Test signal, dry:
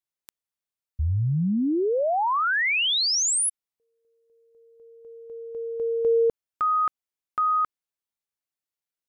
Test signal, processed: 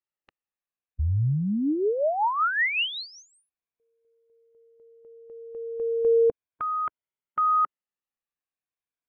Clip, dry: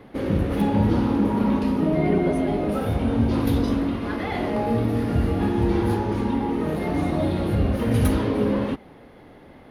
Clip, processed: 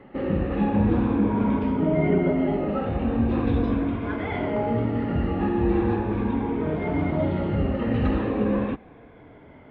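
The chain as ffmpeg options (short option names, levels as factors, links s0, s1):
-af "afftfilt=real='re*pow(10,8/40*sin(2*PI*(1.7*log(max(b,1)*sr/1024/100)/log(2)-(-0.39)*(pts-256)/sr)))':imag='im*pow(10,8/40*sin(2*PI*(1.7*log(max(b,1)*sr/1024/100)/log(2)-(-0.39)*(pts-256)/sr)))':win_size=1024:overlap=0.75,lowpass=f=2900:w=0.5412,lowpass=f=2900:w=1.3066,volume=0.794"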